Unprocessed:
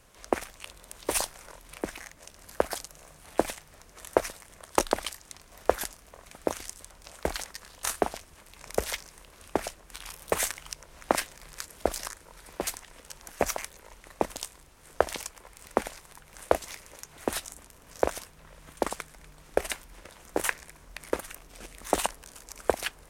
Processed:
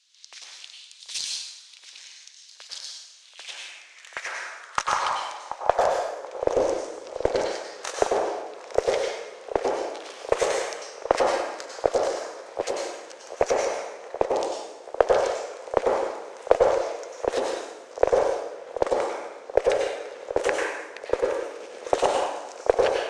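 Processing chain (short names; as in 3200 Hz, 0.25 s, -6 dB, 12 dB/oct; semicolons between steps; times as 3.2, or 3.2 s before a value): LPF 6900 Hz 24 dB/oct; on a send: band-limited delay 0.732 s, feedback 45%, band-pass 710 Hz, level -12.5 dB; on the sum: plate-style reverb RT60 1.2 s, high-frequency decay 0.7×, pre-delay 85 ms, DRR -2 dB; high-pass sweep 3900 Hz -> 470 Hz, 3.08–6.42; added harmonics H 6 -29 dB, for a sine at -0.5 dBFS; 6.53–7.51 low shelf 260 Hz +9.5 dB; gain -1 dB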